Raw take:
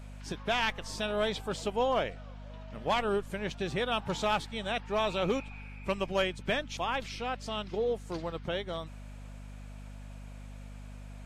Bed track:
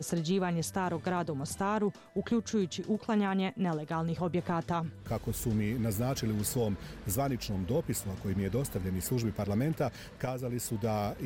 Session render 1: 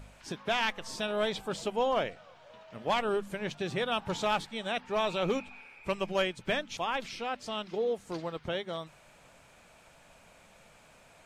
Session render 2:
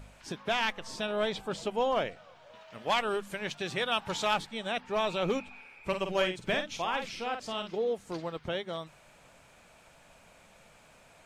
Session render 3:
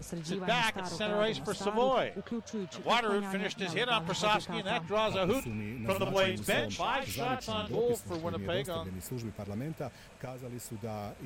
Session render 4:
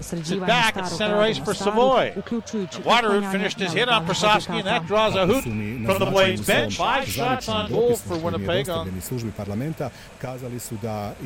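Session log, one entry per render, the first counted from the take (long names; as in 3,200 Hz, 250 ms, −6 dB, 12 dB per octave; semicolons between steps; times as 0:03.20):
hum removal 50 Hz, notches 5
0:00.75–0:01.71: high-shelf EQ 9,100 Hz −7 dB; 0:02.55–0:04.34: tilt shelving filter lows −4 dB, about 770 Hz; 0:05.86–0:07.70: double-tracking delay 49 ms −6.5 dB
mix in bed track −7.5 dB
level +10.5 dB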